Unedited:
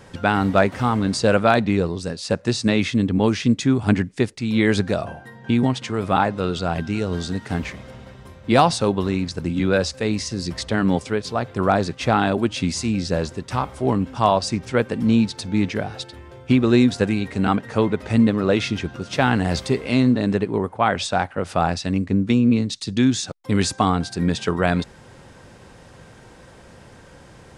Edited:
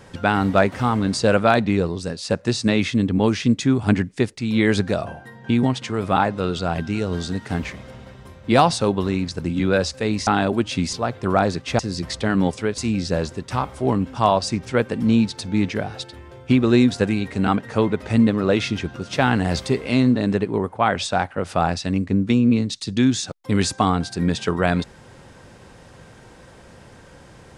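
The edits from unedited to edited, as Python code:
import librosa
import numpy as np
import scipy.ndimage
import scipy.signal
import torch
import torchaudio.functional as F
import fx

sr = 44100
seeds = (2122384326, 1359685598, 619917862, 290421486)

y = fx.edit(x, sr, fx.swap(start_s=10.27, length_s=0.99, other_s=12.12, other_length_s=0.66), tone=tone)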